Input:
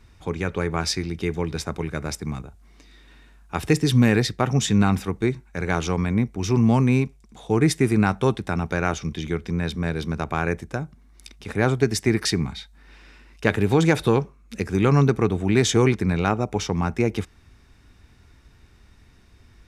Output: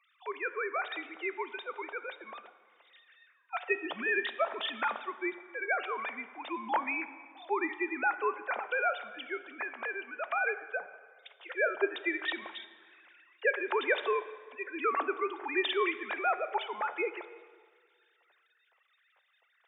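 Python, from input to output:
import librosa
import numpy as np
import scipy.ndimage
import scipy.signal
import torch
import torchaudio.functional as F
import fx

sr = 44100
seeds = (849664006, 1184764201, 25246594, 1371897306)

y = fx.sine_speech(x, sr)
y = scipy.signal.sosfilt(scipy.signal.butter(4, 550.0, 'highpass', fs=sr, output='sos'), y)
y = fx.rev_plate(y, sr, seeds[0], rt60_s=1.8, hf_ratio=0.75, predelay_ms=0, drr_db=11.5)
y = F.gain(torch.from_numpy(y), -2.5).numpy()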